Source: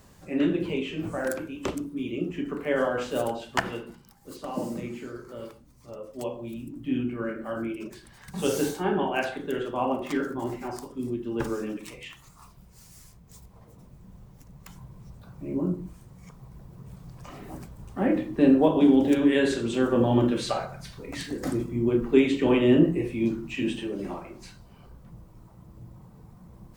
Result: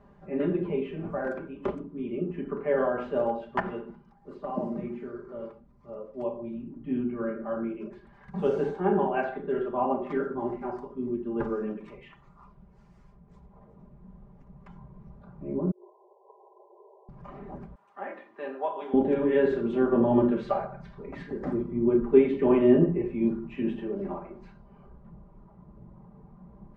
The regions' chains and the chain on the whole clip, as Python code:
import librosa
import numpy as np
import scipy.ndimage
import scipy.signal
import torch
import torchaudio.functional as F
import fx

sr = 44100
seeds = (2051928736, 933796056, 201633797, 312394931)

y = fx.chain(x, sr, fx.brickwall_bandpass(low_hz=350.0, high_hz=1100.0),
    fx.over_compress(threshold_db=-54.0, ratio=-1.0), at=(15.71, 17.09))
y = fx.chain(y, sr, fx.highpass(hz=1000.0, slope=12),
    fx.high_shelf(hz=8700.0, db=11.5), at=(17.75, 18.94))
y = scipy.signal.sosfilt(scipy.signal.butter(2, 1200.0, 'lowpass', fs=sr, output='sos'), y)
y = fx.low_shelf(y, sr, hz=320.0, db=-3.5)
y = y + 0.65 * np.pad(y, (int(5.0 * sr / 1000.0), 0))[:len(y)]